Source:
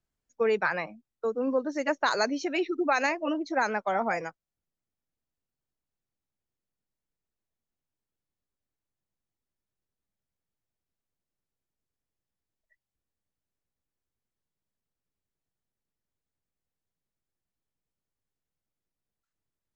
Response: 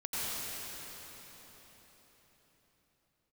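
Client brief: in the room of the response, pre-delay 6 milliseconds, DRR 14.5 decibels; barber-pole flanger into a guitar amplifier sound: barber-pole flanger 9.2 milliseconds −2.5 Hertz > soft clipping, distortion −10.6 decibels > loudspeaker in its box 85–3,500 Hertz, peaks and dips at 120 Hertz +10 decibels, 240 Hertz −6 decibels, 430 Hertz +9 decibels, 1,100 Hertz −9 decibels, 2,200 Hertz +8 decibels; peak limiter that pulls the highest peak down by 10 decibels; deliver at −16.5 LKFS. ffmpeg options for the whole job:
-filter_complex "[0:a]alimiter=limit=-21.5dB:level=0:latency=1,asplit=2[link_01][link_02];[1:a]atrim=start_sample=2205,adelay=6[link_03];[link_02][link_03]afir=irnorm=-1:irlink=0,volume=-21dB[link_04];[link_01][link_04]amix=inputs=2:normalize=0,asplit=2[link_05][link_06];[link_06]adelay=9.2,afreqshift=-2.5[link_07];[link_05][link_07]amix=inputs=2:normalize=1,asoftclip=threshold=-32.5dB,highpass=85,equalizer=frequency=120:width_type=q:width=4:gain=10,equalizer=frequency=240:width_type=q:width=4:gain=-6,equalizer=frequency=430:width_type=q:width=4:gain=9,equalizer=frequency=1100:width_type=q:width=4:gain=-9,equalizer=frequency=2200:width_type=q:width=4:gain=8,lowpass=frequency=3500:width=0.5412,lowpass=frequency=3500:width=1.3066,volume=19.5dB"

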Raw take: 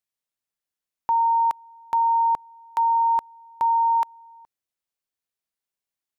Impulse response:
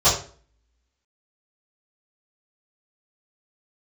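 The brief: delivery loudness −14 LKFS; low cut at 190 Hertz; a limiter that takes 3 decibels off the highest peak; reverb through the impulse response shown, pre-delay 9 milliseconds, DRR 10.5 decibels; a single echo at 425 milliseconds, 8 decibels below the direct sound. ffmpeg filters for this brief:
-filter_complex "[0:a]highpass=190,alimiter=limit=-18.5dB:level=0:latency=1,aecho=1:1:425:0.398,asplit=2[link_01][link_02];[1:a]atrim=start_sample=2205,adelay=9[link_03];[link_02][link_03]afir=irnorm=-1:irlink=0,volume=-30.5dB[link_04];[link_01][link_04]amix=inputs=2:normalize=0,volume=9.5dB"

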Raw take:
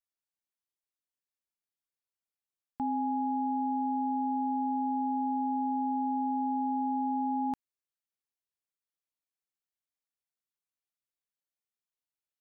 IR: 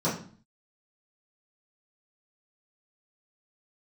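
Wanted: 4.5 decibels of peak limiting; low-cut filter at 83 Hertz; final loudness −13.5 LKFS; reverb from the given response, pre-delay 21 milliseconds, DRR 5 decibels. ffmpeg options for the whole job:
-filter_complex "[0:a]highpass=83,alimiter=level_in=5dB:limit=-24dB:level=0:latency=1,volume=-5dB,asplit=2[link_01][link_02];[1:a]atrim=start_sample=2205,adelay=21[link_03];[link_02][link_03]afir=irnorm=-1:irlink=0,volume=-16.5dB[link_04];[link_01][link_04]amix=inputs=2:normalize=0,volume=18.5dB"

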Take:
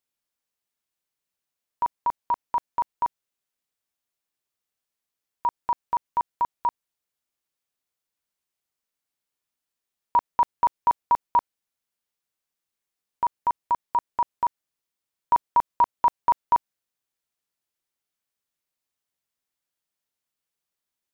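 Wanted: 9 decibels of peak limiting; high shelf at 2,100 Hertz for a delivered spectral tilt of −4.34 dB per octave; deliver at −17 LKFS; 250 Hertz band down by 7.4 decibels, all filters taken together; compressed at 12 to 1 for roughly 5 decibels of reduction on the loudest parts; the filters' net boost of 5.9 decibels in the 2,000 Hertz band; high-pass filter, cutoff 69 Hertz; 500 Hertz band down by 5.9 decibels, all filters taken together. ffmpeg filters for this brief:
ffmpeg -i in.wav -af "highpass=69,equalizer=frequency=250:width_type=o:gain=-8,equalizer=frequency=500:width_type=o:gain=-7.5,equalizer=frequency=2000:width_type=o:gain=4.5,highshelf=frequency=2100:gain=7.5,acompressor=threshold=-20dB:ratio=12,volume=16.5dB,alimiter=limit=-5.5dB:level=0:latency=1" out.wav

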